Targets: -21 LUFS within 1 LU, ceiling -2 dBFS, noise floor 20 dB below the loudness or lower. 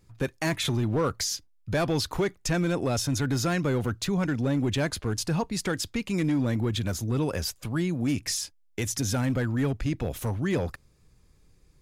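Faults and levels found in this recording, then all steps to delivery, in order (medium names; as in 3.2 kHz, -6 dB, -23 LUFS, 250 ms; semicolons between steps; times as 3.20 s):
clipped samples 1.6%; clipping level -20.0 dBFS; loudness -28.0 LUFS; peak level -20.0 dBFS; loudness target -21.0 LUFS
-> clip repair -20 dBFS; trim +7 dB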